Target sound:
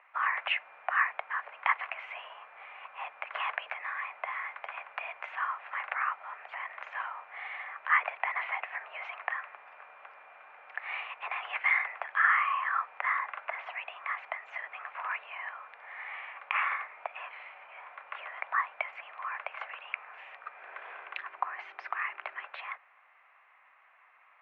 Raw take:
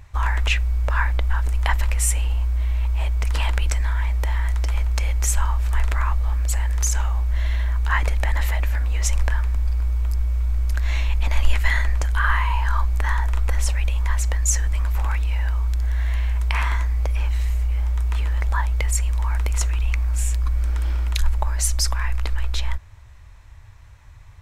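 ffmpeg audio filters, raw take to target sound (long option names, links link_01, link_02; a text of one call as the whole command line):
ffmpeg -i in.wav -filter_complex "[0:a]asettb=1/sr,asplit=3[link_01][link_02][link_03];[link_01]atrim=end=20.604[link_04];[link_02]atrim=start=20.6:end=22.46,asetpts=PTS-STARTPTS,afade=type=in:duration=0.004:curve=qsin,afade=type=out:start_time=1.856:duration=0.004:curve=qsin,aeval=exprs='val(0)+0.0224*(sin(2*PI*50*n/s)+sin(2*PI*2*50*n/s)/2+sin(2*PI*3*50*n/s)/3+sin(2*PI*4*50*n/s)/4+sin(2*PI*5*50*n/s)/5)':channel_layout=same[link_05];[link_03]atrim=start=22.456[link_06];[link_04][link_05]acrossfade=duration=0.004:curve1=hsin:curve2=qsin[link_07];[link_07][link_06]acrossfade=duration=0.004:curve1=qsin:curve2=hsin,highpass=frequency=460:width_type=q:width=0.5412,highpass=frequency=460:width_type=q:width=1.307,lowpass=frequency=2400:width_type=q:width=0.5176,lowpass=frequency=2400:width_type=q:width=0.7071,lowpass=frequency=2400:width_type=q:width=1.932,afreqshift=150,volume=-1.5dB" out.wav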